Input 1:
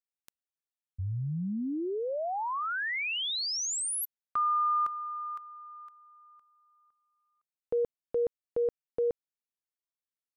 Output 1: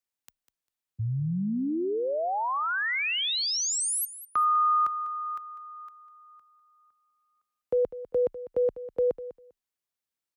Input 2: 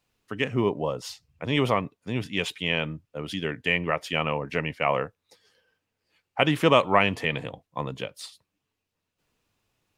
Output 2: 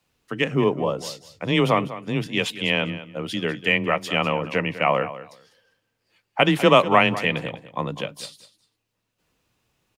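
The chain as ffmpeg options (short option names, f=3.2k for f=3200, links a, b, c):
-af "aecho=1:1:199|398:0.188|0.0301,afreqshift=18,volume=4dB"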